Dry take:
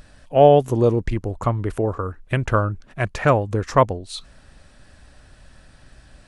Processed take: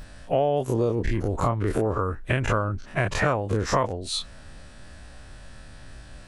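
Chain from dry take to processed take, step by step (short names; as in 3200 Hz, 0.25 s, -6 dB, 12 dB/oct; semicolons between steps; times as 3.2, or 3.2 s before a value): spectral dilation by 60 ms; compressor 6:1, threshold -20 dBFS, peak gain reduction 13.5 dB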